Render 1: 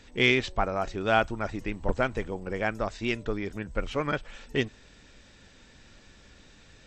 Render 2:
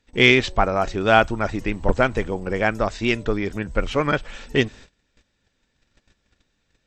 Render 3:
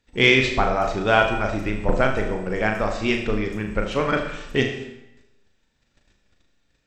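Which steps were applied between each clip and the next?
gate -49 dBFS, range -24 dB; trim +8 dB
flutter echo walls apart 6.5 m, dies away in 0.38 s; on a send at -8 dB: reverberation RT60 0.90 s, pre-delay 25 ms; on the sum: trim -2.5 dB

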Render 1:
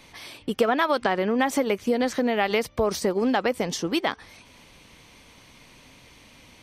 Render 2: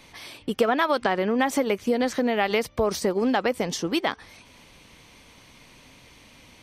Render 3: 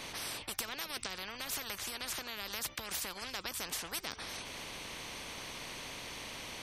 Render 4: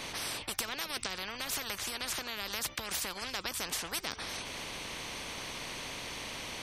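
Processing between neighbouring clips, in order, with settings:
no audible change
spectrum-flattening compressor 10:1; trim -8 dB
peaking EQ 13 kHz -3 dB 0.45 oct; trim +3.5 dB

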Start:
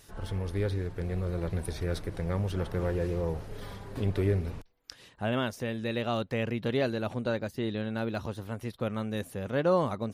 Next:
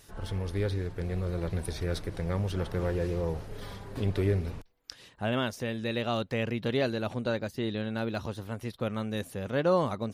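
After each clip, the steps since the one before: dynamic bell 4.6 kHz, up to +3 dB, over -54 dBFS, Q 0.79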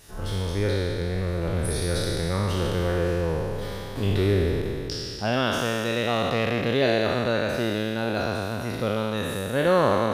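spectral sustain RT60 2.74 s; trim +3 dB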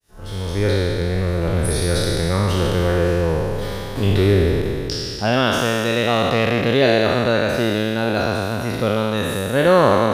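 fade-in on the opening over 0.70 s; trim +6.5 dB

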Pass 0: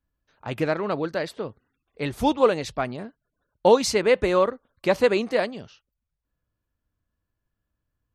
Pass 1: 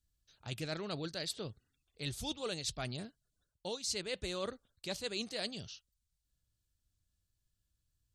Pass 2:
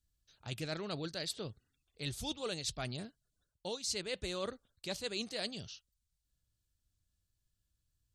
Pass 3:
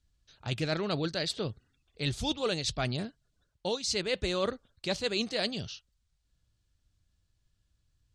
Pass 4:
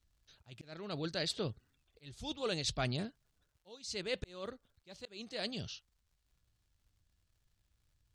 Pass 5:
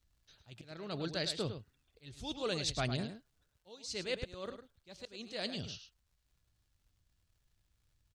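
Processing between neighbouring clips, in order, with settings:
graphic EQ 250/500/1000/2000/4000/8000 Hz -8/-8/-12/-7/+7/+9 dB; reverse; compression 12:1, threshold -34 dBFS, peak gain reduction 19 dB; reverse; trim -1 dB
no audible change
distance through air 72 m; trim +9 dB
slow attack 622 ms; crackle 180 per s -63 dBFS; trim -3.5 dB
delay 105 ms -9.5 dB

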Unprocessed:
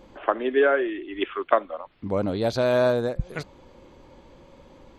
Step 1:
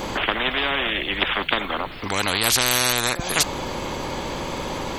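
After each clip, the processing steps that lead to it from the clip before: treble shelf 5.9 kHz +8.5 dB; spectrum-flattening compressor 10:1; trim +3 dB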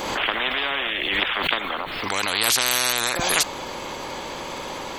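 bass shelf 270 Hz -11.5 dB; swell ahead of each attack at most 29 dB/s; trim -1.5 dB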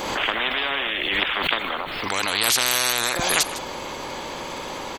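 delay 155 ms -14.5 dB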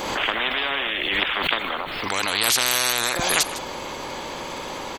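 no audible change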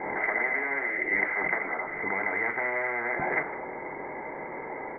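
rippled Chebyshev low-pass 2.1 kHz, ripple 6 dB; reverberation RT60 0.45 s, pre-delay 3 ms, DRR 9.5 dB; trim -4.5 dB

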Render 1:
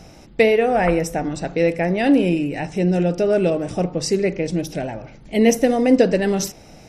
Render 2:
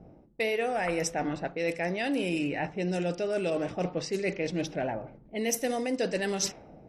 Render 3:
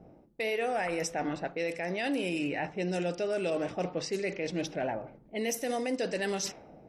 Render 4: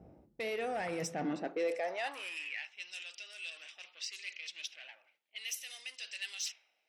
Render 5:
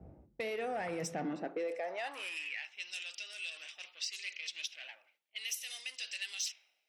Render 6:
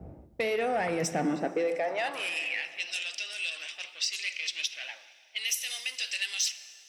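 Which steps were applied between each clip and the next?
level-controlled noise filter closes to 390 Hz, open at -14 dBFS; tilt EQ +2.5 dB/octave; reverse; compression 6:1, threshold -27 dBFS, peak gain reduction 15.5 dB; reverse
bass shelf 170 Hz -6.5 dB; peak limiter -22.5 dBFS, peak gain reduction 7 dB
saturation -26 dBFS, distortion -18 dB; high-pass sweep 64 Hz -> 2.9 kHz, 0.70–2.67 s; trim -4 dB
compression 4:1, threshold -42 dBFS, peak gain reduction 11 dB; three bands expanded up and down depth 40%; trim +5.5 dB
plate-style reverb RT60 3.1 s, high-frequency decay 0.7×, DRR 13.5 dB; trim +8.5 dB

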